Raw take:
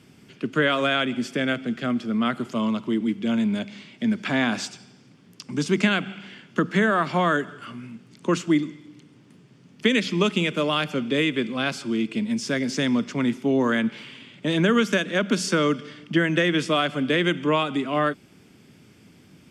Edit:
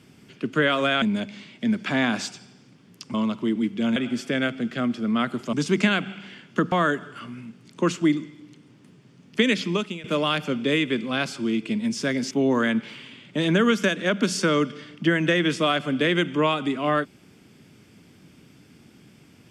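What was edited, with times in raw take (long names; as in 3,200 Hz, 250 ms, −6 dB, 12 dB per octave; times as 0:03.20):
0:01.02–0:02.59: swap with 0:03.41–0:05.53
0:06.72–0:07.18: remove
0:10.05–0:10.50: fade out linear, to −20 dB
0:12.77–0:13.40: remove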